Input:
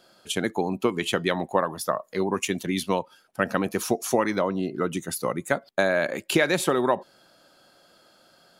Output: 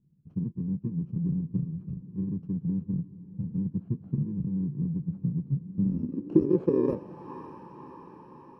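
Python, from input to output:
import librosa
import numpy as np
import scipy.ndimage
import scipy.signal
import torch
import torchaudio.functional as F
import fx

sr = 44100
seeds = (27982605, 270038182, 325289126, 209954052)

y = fx.bit_reversed(x, sr, seeds[0], block=64)
y = fx.echo_diffused(y, sr, ms=590, feedback_pct=63, wet_db=-16)
y = fx.filter_sweep_lowpass(y, sr, from_hz=150.0, to_hz=890.0, start_s=5.58, end_s=7.32, q=3.8)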